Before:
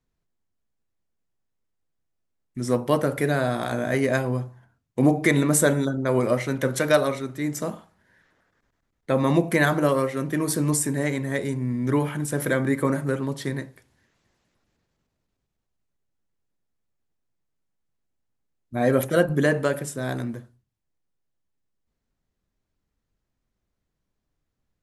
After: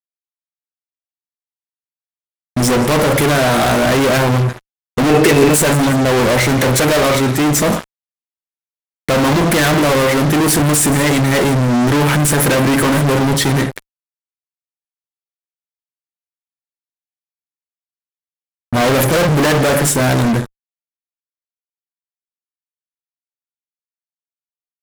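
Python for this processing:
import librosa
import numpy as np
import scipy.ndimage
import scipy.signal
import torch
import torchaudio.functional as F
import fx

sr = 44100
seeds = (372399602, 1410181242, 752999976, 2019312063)

y = fx.echo_wet_highpass(x, sr, ms=174, feedback_pct=37, hz=1600.0, wet_db=-21.5)
y = fx.fuzz(y, sr, gain_db=41.0, gate_db=-47.0)
y = fx.small_body(y, sr, hz=(420.0, 2600.0), ring_ms=45, db=12, at=(5.09, 5.56))
y = F.gain(torch.from_numpy(y), 1.5).numpy()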